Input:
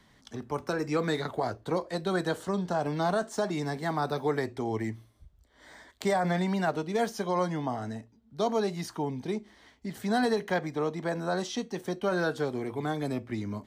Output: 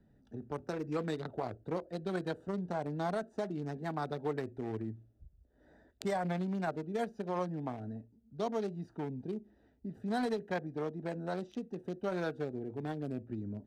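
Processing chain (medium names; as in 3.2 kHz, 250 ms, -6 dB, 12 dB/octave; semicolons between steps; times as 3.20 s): local Wiener filter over 41 samples; in parallel at -1 dB: compression, threshold -40 dBFS, peak gain reduction 15.5 dB; on the sum: trim -7.5 dB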